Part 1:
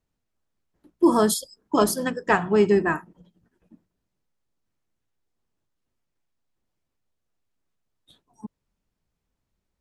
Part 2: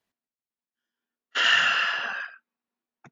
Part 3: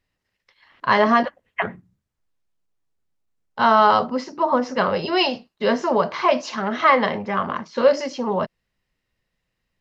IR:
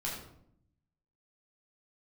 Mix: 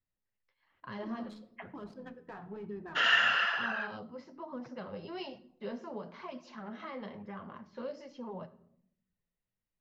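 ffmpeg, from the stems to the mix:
-filter_complex "[0:a]equalizer=f=4000:t=o:w=0.31:g=9,adynamicsmooth=sensitivity=2:basefreq=1500,alimiter=limit=0.141:level=0:latency=1:release=13,volume=0.15,asplit=2[s0][s1];[s1]volume=0.224[s2];[1:a]adelay=1600,volume=1.19[s3];[2:a]acrossover=split=420|3000[s4][s5][s6];[s5]acompressor=threshold=0.0447:ratio=6[s7];[s4][s7][s6]amix=inputs=3:normalize=0,volume=0.188,asplit=3[s8][s9][s10];[s9]volume=0.2[s11];[s10]apad=whole_len=432502[s12];[s0][s12]sidechaincompress=threshold=0.00794:ratio=8:attack=16:release=217[s13];[3:a]atrim=start_sample=2205[s14];[s2][s11]amix=inputs=2:normalize=0[s15];[s15][s14]afir=irnorm=-1:irlink=0[s16];[s13][s3][s8][s16]amix=inputs=4:normalize=0,aemphasis=mode=reproduction:type=75kf,flanger=delay=0.6:depth=9.6:regen=-35:speed=1.1:shape=sinusoidal"

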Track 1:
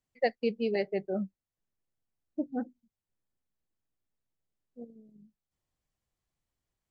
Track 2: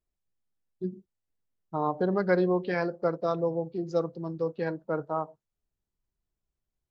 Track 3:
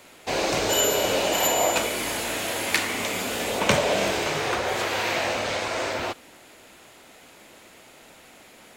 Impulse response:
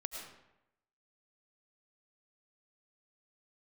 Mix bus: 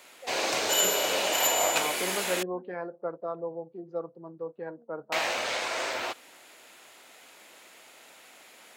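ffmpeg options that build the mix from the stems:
-filter_complex "[0:a]lowpass=1200,acompressor=threshold=0.00562:ratio=2,volume=0.562[s0];[1:a]lowpass=1200,volume=0.841[s1];[2:a]aeval=exprs='0.668*(cos(1*acos(clip(val(0)/0.668,-1,1)))-cos(1*PI/2))+0.0944*(cos(4*acos(clip(val(0)/0.668,-1,1)))-cos(4*PI/2))':c=same,volume=0.841,asplit=3[s2][s3][s4];[s2]atrim=end=2.43,asetpts=PTS-STARTPTS,afade=t=out:st=2.426:d=0.004:c=hsin[s5];[s3]atrim=start=2.43:end=5.12,asetpts=PTS-STARTPTS,volume=0[s6];[s4]atrim=start=5.12,asetpts=PTS-STARTPTS,afade=t=in:d=0.004:c=hsin[s7];[s5][s6][s7]concat=n=3:v=0:a=1[s8];[s0][s1][s8]amix=inputs=3:normalize=0,highpass=f=710:p=1"

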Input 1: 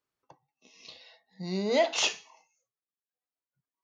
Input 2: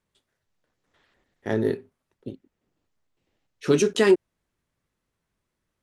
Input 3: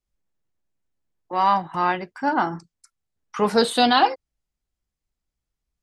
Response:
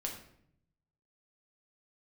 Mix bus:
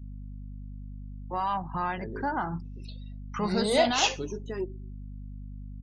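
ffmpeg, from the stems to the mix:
-filter_complex "[0:a]adelay=2000,volume=1.12[s0];[1:a]deesser=0.9,equalizer=f=6600:t=o:w=1.3:g=12.5,adelay=500,volume=0.141,asplit=2[s1][s2];[s2]volume=0.178[s3];[2:a]asubboost=boost=10.5:cutoff=110,asoftclip=type=tanh:threshold=0.282,volume=0.708[s4];[s1][s4]amix=inputs=2:normalize=0,aeval=exprs='val(0)+0.0112*(sin(2*PI*50*n/s)+sin(2*PI*2*50*n/s)/2+sin(2*PI*3*50*n/s)/3+sin(2*PI*4*50*n/s)/4+sin(2*PI*5*50*n/s)/5)':c=same,alimiter=limit=0.0891:level=0:latency=1:release=180,volume=1[s5];[3:a]atrim=start_sample=2205[s6];[s3][s6]afir=irnorm=-1:irlink=0[s7];[s0][s5][s7]amix=inputs=3:normalize=0,afftdn=nr=28:nf=-44"

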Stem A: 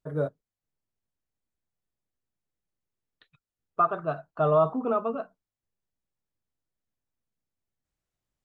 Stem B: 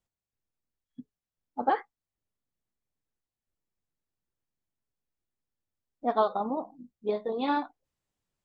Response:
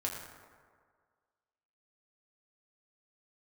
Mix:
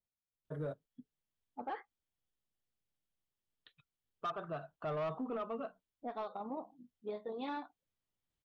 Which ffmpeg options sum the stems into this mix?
-filter_complex "[0:a]equalizer=f=3200:t=o:w=0.51:g=8.5,adelay=450,volume=0.501[s0];[1:a]lowpass=3800,adynamicequalizer=threshold=0.0141:dfrequency=1700:dqfactor=0.7:tfrequency=1700:tqfactor=0.7:attack=5:release=100:ratio=0.375:range=2.5:mode=boostabove:tftype=highshelf,volume=0.316[s1];[s0][s1]amix=inputs=2:normalize=0,asoftclip=type=tanh:threshold=0.0531,alimiter=level_in=2.66:limit=0.0631:level=0:latency=1:release=158,volume=0.376"

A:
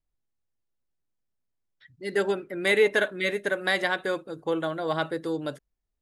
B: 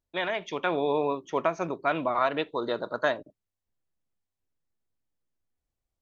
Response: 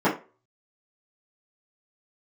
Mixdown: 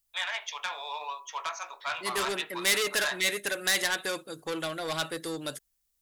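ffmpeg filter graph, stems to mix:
-filter_complex "[0:a]volume=0.562[s0];[1:a]highpass=f=850:w=0.5412,highpass=f=850:w=1.3066,volume=0.355,asplit=2[s1][s2];[s2]volume=0.0944[s3];[2:a]atrim=start_sample=2205[s4];[s3][s4]afir=irnorm=-1:irlink=0[s5];[s0][s1][s5]amix=inputs=3:normalize=0,asoftclip=type=tanh:threshold=0.0316,crystalizer=i=8.5:c=0"

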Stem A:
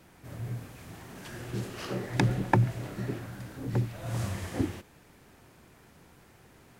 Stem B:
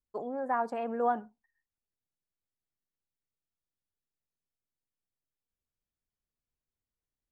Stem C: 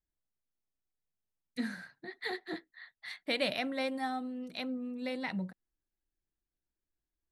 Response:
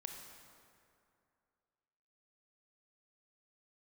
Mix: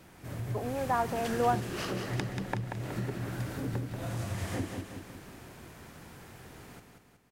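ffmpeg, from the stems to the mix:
-filter_complex "[0:a]acompressor=threshold=0.0126:ratio=12,volume=1.26,asplit=2[s0][s1];[s1]volume=0.501[s2];[1:a]adelay=400,volume=0.708[s3];[s2]aecho=0:1:185|370|555|740|925|1110|1295:1|0.51|0.26|0.133|0.0677|0.0345|0.0176[s4];[s0][s3][s4]amix=inputs=3:normalize=0,dynaudnorm=f=100:g=7:m=1.58"

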